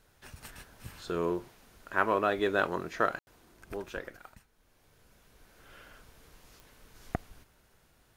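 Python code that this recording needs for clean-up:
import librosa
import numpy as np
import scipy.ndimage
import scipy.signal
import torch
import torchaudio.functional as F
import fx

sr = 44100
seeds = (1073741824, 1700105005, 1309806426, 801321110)

y = fx.fix_declick_ar(x, sr, threshold=10.0)
y = fx.fix_ambience(y, sr, seeds[0], print_start_s=4.42, print_end_s=4.92, start_s=3.19, end_s=3.27)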